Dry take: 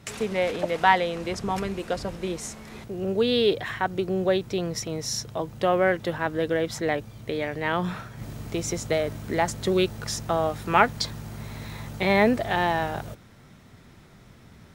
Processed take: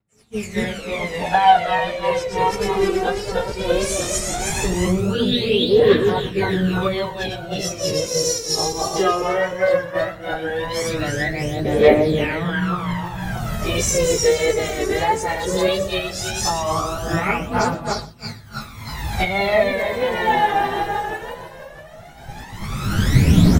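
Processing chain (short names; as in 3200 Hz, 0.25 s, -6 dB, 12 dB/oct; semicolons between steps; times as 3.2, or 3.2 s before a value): regenerating reverse delay 0.101 s, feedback 69%, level 0 dB; recorder AGC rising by 19 dB/s; expander -16 dBFS; phaser 0.27 Hz, delay 2.6 ms, feedback 72%; plain phase-vocoder stretch 1.6×; on a send: echo 0.117 s -19 dB; on the sum: vibrato 1.6 Hz 38 cents; gain -2 dB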